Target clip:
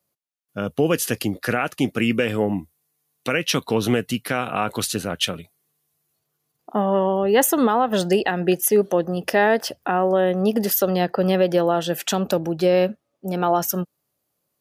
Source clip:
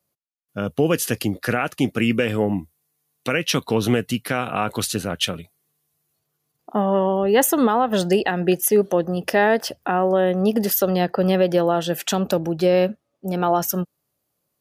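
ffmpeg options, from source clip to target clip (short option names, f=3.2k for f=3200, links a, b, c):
-af "lowshelf=f=120:g=-4.5"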